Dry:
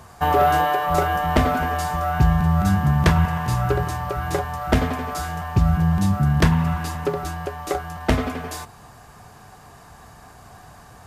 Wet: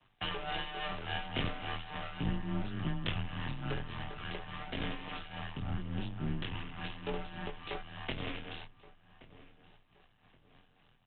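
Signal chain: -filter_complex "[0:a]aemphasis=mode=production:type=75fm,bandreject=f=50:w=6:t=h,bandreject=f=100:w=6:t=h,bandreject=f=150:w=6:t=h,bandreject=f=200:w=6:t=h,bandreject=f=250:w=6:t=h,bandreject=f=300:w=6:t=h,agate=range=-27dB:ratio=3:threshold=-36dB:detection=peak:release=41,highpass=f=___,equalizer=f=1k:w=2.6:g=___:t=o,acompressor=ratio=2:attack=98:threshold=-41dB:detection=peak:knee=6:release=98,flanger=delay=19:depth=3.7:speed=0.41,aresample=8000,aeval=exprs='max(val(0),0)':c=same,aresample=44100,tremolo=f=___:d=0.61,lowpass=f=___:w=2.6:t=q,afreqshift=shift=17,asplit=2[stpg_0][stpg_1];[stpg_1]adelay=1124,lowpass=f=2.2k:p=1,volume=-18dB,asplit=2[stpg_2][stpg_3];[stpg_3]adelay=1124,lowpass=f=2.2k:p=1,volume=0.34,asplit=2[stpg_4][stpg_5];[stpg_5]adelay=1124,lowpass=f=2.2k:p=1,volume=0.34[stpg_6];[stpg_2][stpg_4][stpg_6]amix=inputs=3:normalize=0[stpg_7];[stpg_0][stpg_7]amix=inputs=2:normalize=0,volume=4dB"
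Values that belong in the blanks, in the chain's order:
77, -9, 3.5, 3k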